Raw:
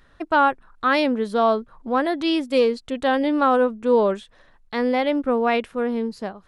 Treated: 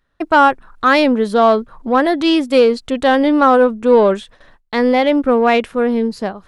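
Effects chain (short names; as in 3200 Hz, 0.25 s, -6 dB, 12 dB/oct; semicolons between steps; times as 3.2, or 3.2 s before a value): gate with hold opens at -44 dBFS; in parallel at -7 dB: soft clip -21 dBFS, distortion -9 dB; on the sum: gain +5.5 dB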